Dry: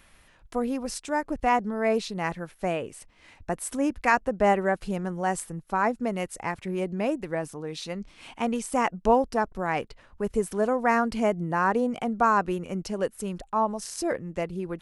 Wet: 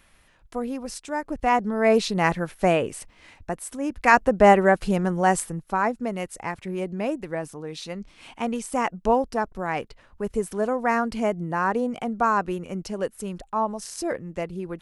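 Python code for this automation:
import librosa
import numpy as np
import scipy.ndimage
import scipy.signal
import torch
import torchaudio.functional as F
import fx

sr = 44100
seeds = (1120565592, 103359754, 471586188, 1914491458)

y = fx.gain(x, sr, db=fx.line((1.16, -1.5), (2.13, 8.0), (2.94, 8.0), (3.79, -4.0), (4.17, 7.0), (5.31, 7.0), (5.94, 0.0)))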